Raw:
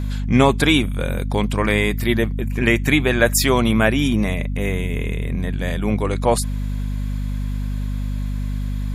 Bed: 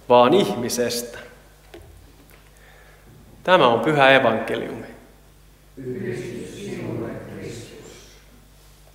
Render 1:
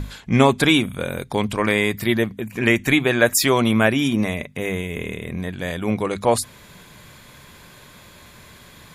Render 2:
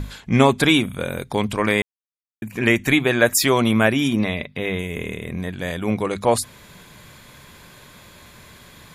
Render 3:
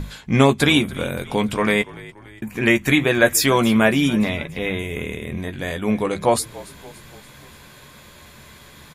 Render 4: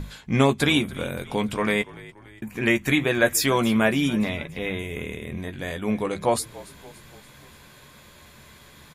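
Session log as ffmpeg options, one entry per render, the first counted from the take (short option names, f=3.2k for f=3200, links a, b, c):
-af "bandreject=f=50:t=h:w=6,bandreject=f=100:t=h:w=6,bandreject=f=150:t=h:w=6,bandreject=f=200:t=h:w=6,bandreject=f=250:t=h:w=6"
-filter_complex "[0:a]asettb=1/sr,asplit=3[a][b][c];[a]atrim=end=4.194[d];[b]atrim=start=4.19:end=4.79,asetpts=PTS-STARTPTS,afade=t=in:d=0.004:c=qsin,afade=t=out:st=0.596:d=0.004:c=qsin,highshelf=f=5.4k:t=q:w=3:g=-8[e];[c]atrim=start=4.786[f];[d][e]acrossfade=d=0.004:c1=hsin:c2=qsin[g];[g][f]acrossfade=d=0.004:c1=qsin:c2=hsin,asplit=3[h][i][j];[h]atrim=end=1.82,asetpts=PTS-STARTPTS,afade=t=out:st=1.816:d=0.004:c=hsin[k];[i]atrim=start=1.82:end=2.42,asetpts=PTS-STARTPTS,volume=0[l];[j]atrim=start=2.42,asetpts=PTS-STARTPTS,afade=t=in:d=0.004:c=hsin[m];[k][l][m]concat=n=3:v=0:a=1"
-filter_complex "[0:a]asplit=2[a][b];[b]adelay=14,volume=-8dB[c];[a][c]amix=inputs=2:normalize=0,asplit=5[d][e][f][g][h];[e]adelay=287,afreqshift=-49,volume=-19.5dB[i];[f]adelay=574,afreqshift=-98,volume=-24.9dB[j];[g]adelay=861,afreqshift=-147,volume=-30.2dB[k];[h]adelay=1148,afreqshift=-196,volume=-35.6dB[l];[d][i][j][k][l]amix=inputs=5:normalize=0"
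-af "volume=-4.5dB"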